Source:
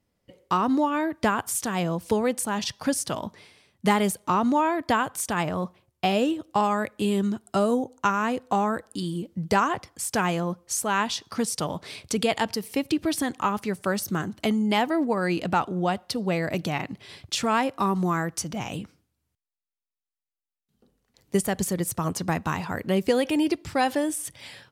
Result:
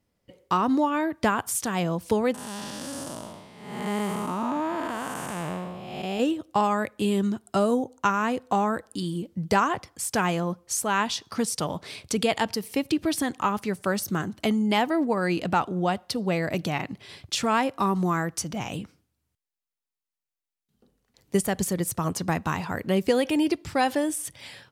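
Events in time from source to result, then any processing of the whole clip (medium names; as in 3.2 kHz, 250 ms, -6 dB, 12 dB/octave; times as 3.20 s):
2.34–6.20 s: spectral blur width 371 ms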